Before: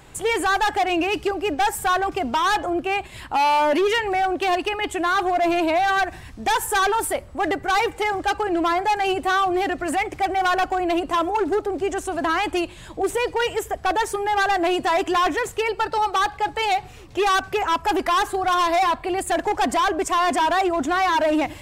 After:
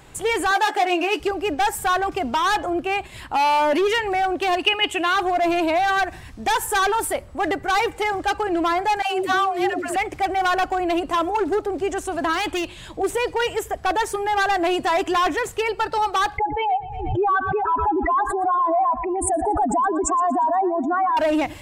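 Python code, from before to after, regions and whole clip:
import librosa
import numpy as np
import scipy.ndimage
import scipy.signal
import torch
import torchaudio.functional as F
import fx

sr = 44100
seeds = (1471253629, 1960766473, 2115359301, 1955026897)

y = fx.chain(x, sr, fx.highpass(hz=280.0, slope=24),
    fx.doubler(ms=14.0, db=-6.5), at=(0.51, 1.2))
y = fx.chain(y, sr, fx.highpass(hz=130.0, slope=6),
    fx.peak_eq(hz=2800.0, db=13.0, octaves=0.42), at=(4.63, 5.16))
y = fx.chain(y, sr, fx.highpass(hz=100.0, slope=12),
    fx.dispersion(late='lows', ms=147.0, hz=410.0), at=(9.02, 9.96))
y = fx.chain(y, sr, fx.peak_eq(hz=3300.0, db=5.5, octaves=1.1),
    fx.clip_hard(threshold_db=-20.5), at=(12.33, 12.91))
y = fx.chain(y, sr, fx.spec_expand(power=2.6),
    fx.echo_feedback(ms=118, feedback_pct=44, wet_db=-16.5),
    fx.pre_swell(db_per_s=47.0), at=(16.38, 21.17))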